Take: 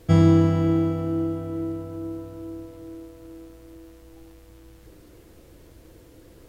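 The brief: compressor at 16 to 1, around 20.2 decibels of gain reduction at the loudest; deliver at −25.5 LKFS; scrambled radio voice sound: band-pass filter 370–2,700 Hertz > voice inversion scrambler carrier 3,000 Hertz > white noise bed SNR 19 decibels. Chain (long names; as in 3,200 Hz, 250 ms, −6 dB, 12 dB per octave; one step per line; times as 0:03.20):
downward compressor 16 to 1, threshold −32 dBFS
band-pass filter 370–2,700 Hz
voice inversion scrambler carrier 3,000 Hz
white noise bed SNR 19 dB
level +14.5 dB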